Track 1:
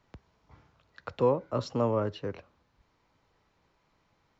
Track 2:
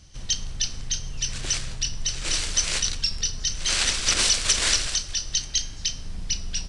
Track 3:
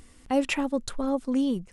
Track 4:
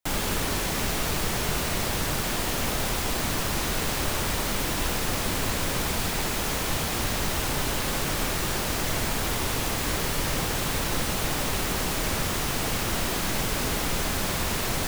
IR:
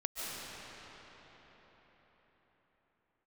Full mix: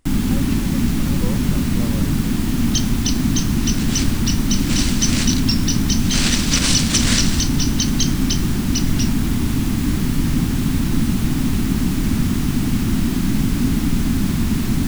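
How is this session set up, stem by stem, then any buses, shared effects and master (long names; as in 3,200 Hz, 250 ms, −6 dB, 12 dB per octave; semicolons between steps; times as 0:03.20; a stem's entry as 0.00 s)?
−8.0 dB, 0.00 s, no send, no processing
+2.5 dB, 2.45 s, no send, no processing
−12.0 dB, 0.00 s, no send, no processing
−2.0 dB, 0.00 s, no send, low shelf with overshoot 360 Hz +12.5 dB, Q 3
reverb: not used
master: no processing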